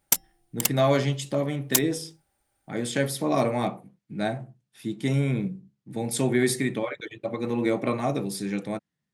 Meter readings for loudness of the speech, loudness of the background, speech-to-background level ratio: −27.5 LKFS, −26.5 LKFS, −1.0 dB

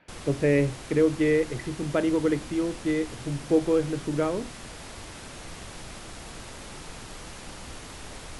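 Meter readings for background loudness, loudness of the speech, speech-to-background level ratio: −41.0 LKFS, −26.0 LKFS, 15.0 dB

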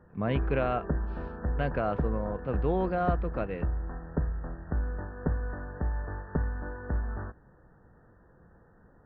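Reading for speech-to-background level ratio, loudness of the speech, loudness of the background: 3.0 dB, −32.0 LKFS, −35.0 LKFS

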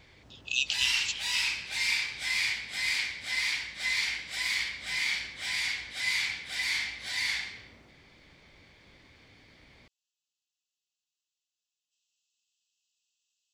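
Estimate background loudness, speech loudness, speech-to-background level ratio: −29.5 LKFS, −30.5 LKFS, −1.0 dB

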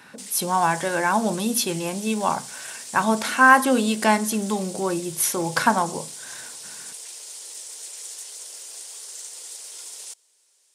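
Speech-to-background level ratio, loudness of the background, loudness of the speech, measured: 14.0 dB, −35.5 LKFS, −21.5 LKFS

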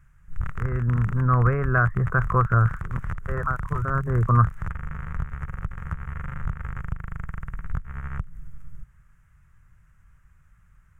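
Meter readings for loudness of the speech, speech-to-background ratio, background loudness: −23.0 LKFS, 11.5 dB, −34.5 LKFS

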